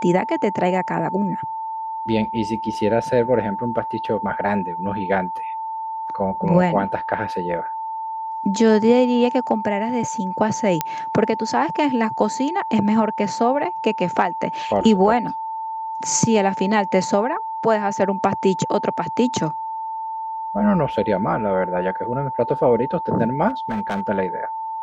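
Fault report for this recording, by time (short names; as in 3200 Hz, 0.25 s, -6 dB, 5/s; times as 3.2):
tone 890 Hz -25 dBFS
10.81 pop -4 dBFS
23.48–24.01 clipped -19.5 dBFS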